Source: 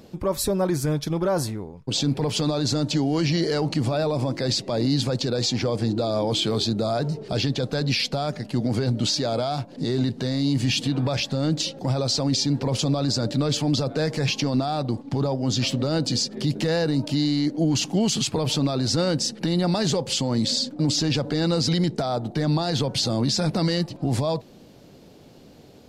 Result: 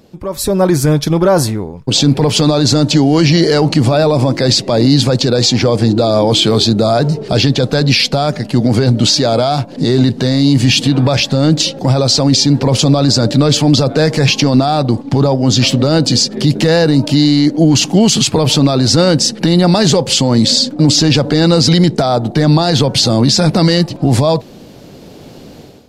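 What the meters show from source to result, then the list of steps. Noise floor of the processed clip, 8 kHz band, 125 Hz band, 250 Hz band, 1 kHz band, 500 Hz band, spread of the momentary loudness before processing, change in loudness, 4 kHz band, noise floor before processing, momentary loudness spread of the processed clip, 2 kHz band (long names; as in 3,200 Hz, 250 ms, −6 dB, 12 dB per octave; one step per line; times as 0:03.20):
−35 dBFS, +12.5 dB, +12.5 dB, +12.5 dB, +12.5 dB, +12.5 dB, 4 LU, +12.5 dB, +12.5 dB, −48 dBFS, 4 LU, +12.5 dB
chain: automatic gain control gain up to 13.5 dB
level +1 dB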